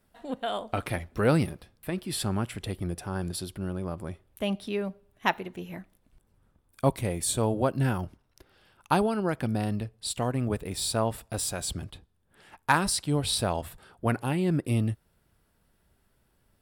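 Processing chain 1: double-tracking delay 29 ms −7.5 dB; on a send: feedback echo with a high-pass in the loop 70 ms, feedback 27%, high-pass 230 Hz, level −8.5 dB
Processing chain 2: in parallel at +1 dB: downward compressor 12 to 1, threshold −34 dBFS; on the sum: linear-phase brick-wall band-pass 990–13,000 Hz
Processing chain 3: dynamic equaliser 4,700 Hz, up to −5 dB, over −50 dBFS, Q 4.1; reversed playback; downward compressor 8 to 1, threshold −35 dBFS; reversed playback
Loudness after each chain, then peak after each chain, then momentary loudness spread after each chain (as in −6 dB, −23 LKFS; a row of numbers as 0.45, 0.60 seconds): −28.5, −32.0, −40.0 LKFS; −7.5, −8.5, −22.5 dBFS; 11, 17, 7 LU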